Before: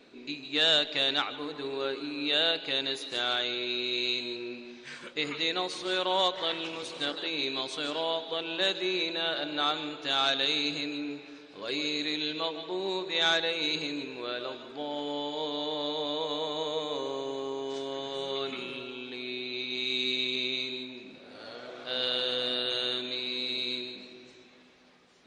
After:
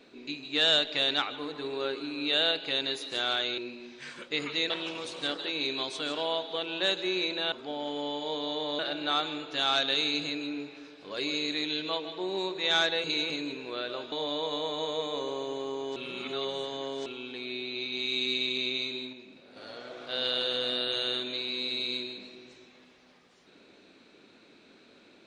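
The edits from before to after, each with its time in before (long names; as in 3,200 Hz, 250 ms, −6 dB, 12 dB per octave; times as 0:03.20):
0:03.58–0:04.43: remove
0:05.55–0:06.48: remove
0:13.55–0:13.81: reverse
0:14.63–0:15.90: move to 0:09.30
0:17.74–0:18.84: reverse
0:20.91–0:21.34: clip gain −4.5 dB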